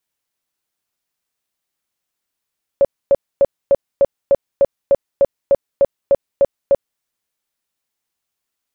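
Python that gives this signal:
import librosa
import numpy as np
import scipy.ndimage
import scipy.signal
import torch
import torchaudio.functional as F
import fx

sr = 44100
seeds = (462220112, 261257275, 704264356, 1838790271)

y = fx.tone_burst(sr, hz=556.0, cycles=21, every_s=0.3, bursts=14, level_db=-7.5)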